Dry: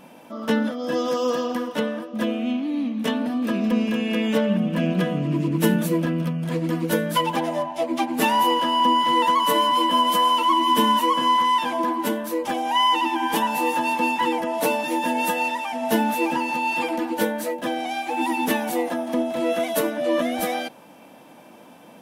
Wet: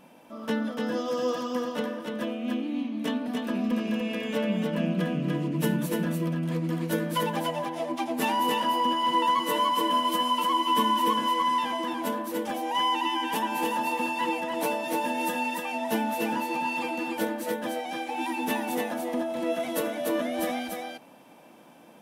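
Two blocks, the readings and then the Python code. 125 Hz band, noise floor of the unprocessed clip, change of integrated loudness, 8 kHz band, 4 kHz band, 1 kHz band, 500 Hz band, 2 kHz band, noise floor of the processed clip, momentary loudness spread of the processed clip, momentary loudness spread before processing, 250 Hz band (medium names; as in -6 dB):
-4.5 dB, -47 dBFS, -5.5 dB, -5.5 dB, -5.5 dB, -6.0 dB, -5.5 dB, -5.5 dB, -52 dBFS, 7 LU, 8 LU, -5.5 dB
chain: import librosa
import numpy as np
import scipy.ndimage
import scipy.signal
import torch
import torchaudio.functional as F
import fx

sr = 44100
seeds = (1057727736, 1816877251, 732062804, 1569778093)

y = x + 10.0 ** (-3.5 / 20.0) * np.pad(x, (int(293 * sr / 1000.0), 0))[:len(x)]
y = F.gain(torch.from_numpy(y), -7.0).numpy()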